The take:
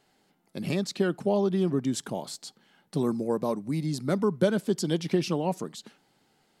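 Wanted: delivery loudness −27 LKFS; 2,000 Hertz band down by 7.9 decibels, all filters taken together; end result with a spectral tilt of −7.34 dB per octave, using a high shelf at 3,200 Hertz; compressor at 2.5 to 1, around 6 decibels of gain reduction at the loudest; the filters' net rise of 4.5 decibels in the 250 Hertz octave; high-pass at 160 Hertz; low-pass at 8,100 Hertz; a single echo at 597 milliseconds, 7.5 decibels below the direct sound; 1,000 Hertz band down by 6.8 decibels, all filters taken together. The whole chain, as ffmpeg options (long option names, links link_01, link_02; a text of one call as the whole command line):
ffmpeg -i in.wav -af "highpass=160,lowpass=8100,equalizer=frequency=250:width_type=o:gain=8,equalizer=frequency=1000:width_type=o:gain=-8,equalizer=frequency=2000:width_type=o:gain=-5,highshelf=frequency=3200:gain=-8.5,acompressor=threshold=-26dB:ratio=2.5,aecho=1:1:597:0.422,volume=3dB" out.wav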